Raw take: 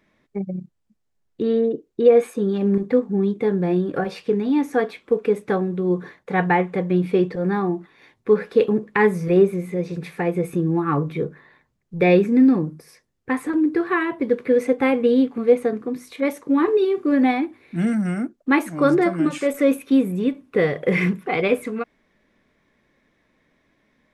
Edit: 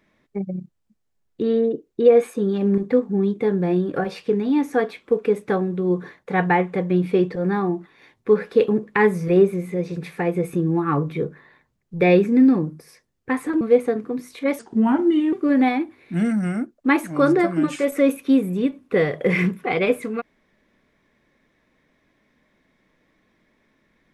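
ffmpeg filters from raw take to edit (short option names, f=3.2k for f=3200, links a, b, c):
-filter_complex "[0:a]asplit=4[a][b][c][d];[a]atrim=end=13.612[e];[b]atrim=start=15.378:end=16.364[f];[c]atrim=start=16.36:end=16.95,asetpts=PTS-STARTPTS,asetrate=35280,aresample=44100[g];[d]atrim=start=16.946[h];[e][f]acrossfade=d=0.004:c1=hsin:c2=hsin[i];[i][g]acrossfade=d=0.004:c1=hsin:c2=hsin[j];[j][h]acrossfade=d=0.004:c1=hsin:c2=hsin"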